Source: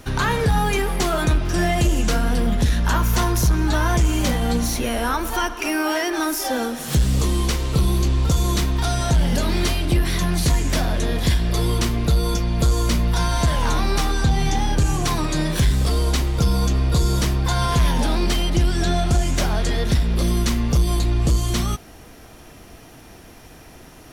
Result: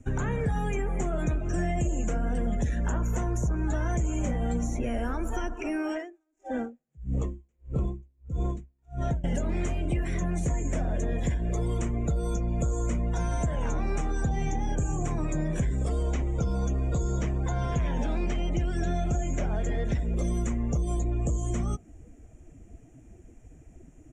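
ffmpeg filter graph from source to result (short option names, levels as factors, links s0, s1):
-filter_complex "[0:a]asettb=1/sr,asplit=3[s0][s1][s2];[s0]atrim=end=5.954[s3];[s1]atrim=start=5.95:end=9.24,asetpts=PTS-STARTPTS,afade=t=in:d=0.004:c=qsin,afade=t=out:st=3.286:d=0.004:c=qsin,adynamicsmooth=sensitivity=3.5:basefreq=1600,aeval=exprs='val(0)*pow(10,-38*(0.5-0.5*cos(2*PI*1.6*n/s))/20)':c=same[s4];[s2]atrim=start=9.236[s5];[s3][s4]acrossfade=d=0.004:c1=hsin:c2=qsin[s6];[s6][s5]acrossfade=d=0.004:c1=qsin:c2=hsin,asettb=1/sr,asplit=3[s7][s8][s9];[s7]atrim=end=16.034[s10];[s8]atrim=start=16.03:end=19.99,asetpts=PTS-STARTPTS,afade=t=in:d=0.004:c=qsin,afade=t=out:st=3.956:d=0.004:c=qsin,acrossover=split=5800[s11][s12];[s12]acompressor=threshold=0.00398:ratio=4:attack=1:release=60[s13];[s11][s13]amix=inputs=2:normalize=0,highshelf=f=7100:g=6[s14];[s9]atrim=start=19.986[s15];[s10][s14]acrossfade=d=0.004:c1=hsin:c2=qsin[s16];[s16][s15]acrossfade=d=0.004:c1=qsin:c2=hsin,afftdn=nr=16:nf=-33,firequalizer=gain_entry='entry(610,0);entry(1000,-11);entry(2300,-4);entry(4500,-26);entry(7000,8);entry(11000,-18)':delay=0.05:min_phase=1,acrossover=split=240|720|1600[s17][s18][s19][s20];[s17]acompressor=threshold=0.0447:ratio=4[s21];[s18]acompressor=threshold=0.0126:ratio=4[s22];[s19]acompressor=threshold=0.01:ratio=4[s23];[s20]acompressor=threshold=0.00562:ratio=4[s24];[s21][s22][s23][s24]amix=inputs=4:normalize=0"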